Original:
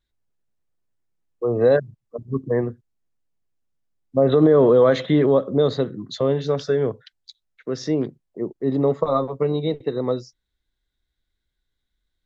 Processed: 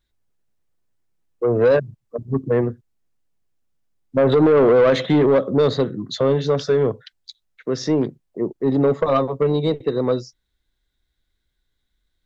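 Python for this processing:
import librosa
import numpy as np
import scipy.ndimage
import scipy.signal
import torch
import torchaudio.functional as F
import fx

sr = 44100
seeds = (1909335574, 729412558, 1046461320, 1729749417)

y = 10.0 ** (-14.0 / 20.0) * np.tanh(x / 10.0 ** (-14.0 / 20.0))
y = F.gain(torch.from_numpy(y), 4.5).numpy()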